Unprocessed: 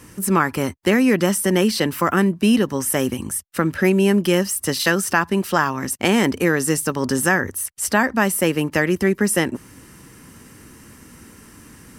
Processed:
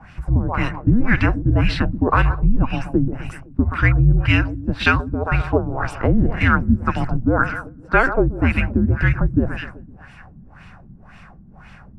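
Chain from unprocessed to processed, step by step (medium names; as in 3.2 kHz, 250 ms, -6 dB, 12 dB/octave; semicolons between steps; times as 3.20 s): frequency shift -250 Hz; two-band feedback delay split 1.5 kHz, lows 127 ms, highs 202 ms, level -12 dB; LFO low-pass sine 1.9 Hz 230–2900 Hz; trim +1 dB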